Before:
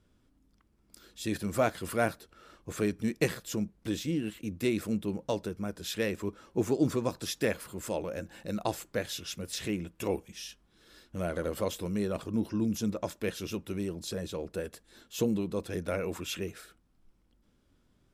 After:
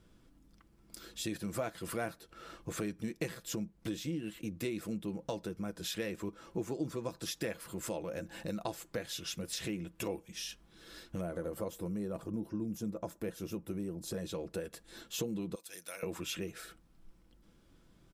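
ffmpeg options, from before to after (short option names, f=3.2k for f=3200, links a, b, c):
-filter_complex "[0:a]asettb=1/sr,asplit=3[a][b][c];[a]atrim=end=11.214[d];[b]atrim=start=11.21:end=14.14,asetpts=PTS-STARTPTS,afade=t=in:d=0.004:c=qsin,afade=t=out:st=2.926:d=0.004:c=qsin,equalizer=f=3.4k:w=0.59:g=-10.5[e];[c]atrim=start=14.136[f];[d][e]acrossfade=d=0.004:c1=hsin:c2=qsin[g];[g][f]acrossfade=d=0.004:c1=qsin:c2=hsin,asettb=1/sr,asplit=3[h][i][j];[h]atrim=end=15.554[k];[i]atrim=start=15.55:end=16.03,asetpts=PTS-STARTPTS,afade=t=in:d=0.004:c=qsin,afade=t=out:st=0.476:d=0.004:c=qsin,aderivative[l];[j]atrim=start=16.026[m];[k][l]acrossfade=d=0.004:c1=hsin:c2=qsin[n];[n][m]acrossfade=d=0.004:c1=qsin:c2=hsin,aecho=1:1:6:0.34,acompressor=threshold=-43dB:ratio=3,volume=4.5dB"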